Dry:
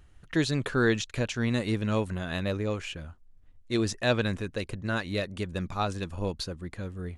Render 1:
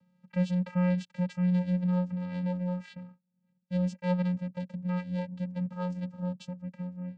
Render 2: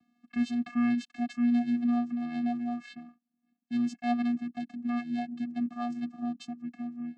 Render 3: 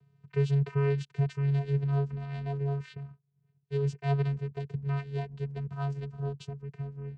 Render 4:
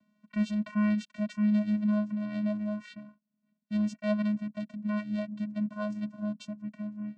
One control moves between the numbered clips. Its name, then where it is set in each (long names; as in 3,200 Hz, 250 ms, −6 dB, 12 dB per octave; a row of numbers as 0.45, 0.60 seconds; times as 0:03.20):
channel vocoder, frequency: 180, 240, 140, 210 Hertz